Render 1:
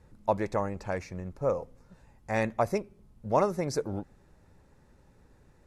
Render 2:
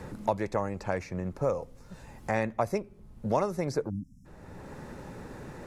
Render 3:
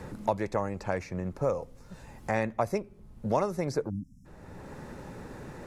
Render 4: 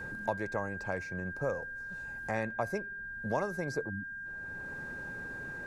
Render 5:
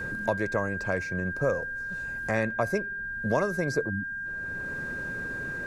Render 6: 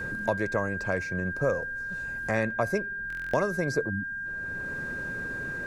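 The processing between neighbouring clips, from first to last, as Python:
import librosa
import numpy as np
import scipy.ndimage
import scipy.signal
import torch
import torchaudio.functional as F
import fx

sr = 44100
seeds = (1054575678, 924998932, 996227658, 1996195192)

y1 = fx.spec_erase(x, sr, start_s=3.9, length_s=0.35, low_hz=280.0, high_hz=5100.0)
y1 = fx.band_squash(y1, sr, depth_pct=70)
y2 = y1
y3 = y2 + 10.0 ** (-34.0 / 20.0) * np.sin(2.0 * np.pi * 1600.0 * np.arange(len(y2)) / sr)
y3 = y3 * librosa.db_to_amplitude(-5.5)
y4 = fx.peak_eq(y3, sr, hz=830.0, db=-12.0, octaves=0.21)
y4 = y4 * librosa.db_to_amplitude(7.5)
y5 = fx.buffer_glitch(y4, sr, at_s=(3.08,), block=1024, repeats=10)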